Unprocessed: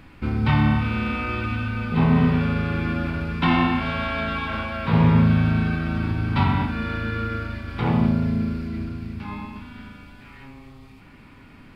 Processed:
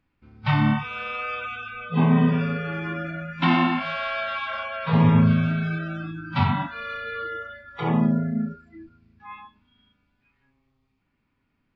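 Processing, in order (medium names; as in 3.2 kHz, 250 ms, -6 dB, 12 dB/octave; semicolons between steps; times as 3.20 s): spectral noise reduction 26 dB; resampled via 16 kHz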